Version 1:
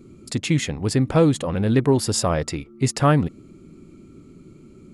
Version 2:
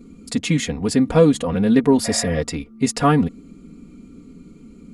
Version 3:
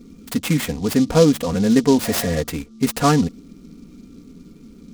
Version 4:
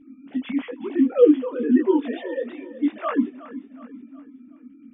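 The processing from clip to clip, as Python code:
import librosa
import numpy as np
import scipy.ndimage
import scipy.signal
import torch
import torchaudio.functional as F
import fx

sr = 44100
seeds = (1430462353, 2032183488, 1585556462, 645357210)

y1 = fx.spec_repair(x, sr, seeds[0], start_s=2.07, length_s=0.28, low_hz=550.0, high_hz=2600.0, source='after')
y1 = fx.low_shelf(y1, sr, hz=370.0, db=3.0)
y1 = y1 + 0.87 * np.pad(y1, (int(4.2 * sr / 1000.0), 0))[:len(y1)]
y1 = y1 * 10.0 ** (-1.0 / 20.0)
y2 = fx.noise_mod_delay(y1, sr, seeds[1], noise_hz=4700.0, depth_ms=0.046)
y3 = fx.sine_speech(y2, sr)
y3 = fx.echo_feedback(y3, sr, ms=369, feedback_pct=42, wet_db=-15)
y3 = fx.detune_double(y3, sr, cents=35)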